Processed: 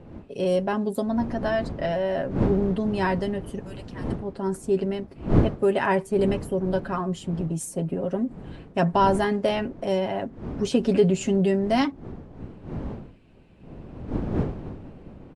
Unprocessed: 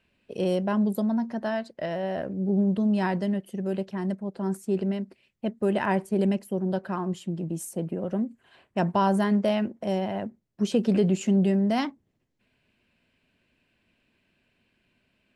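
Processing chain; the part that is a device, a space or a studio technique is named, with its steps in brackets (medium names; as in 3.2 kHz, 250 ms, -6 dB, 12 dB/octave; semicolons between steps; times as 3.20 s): comb 7.3 ms, depth 59%; 3.59–4.13 s: amplifier tone stack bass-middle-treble 10-0-10; smartphone video outdoors (wind noise 270 Hz -35 dBFS; level rider gain up to 3.5 dB; trim -1 dB; AAC 96 kbps 24 kHz)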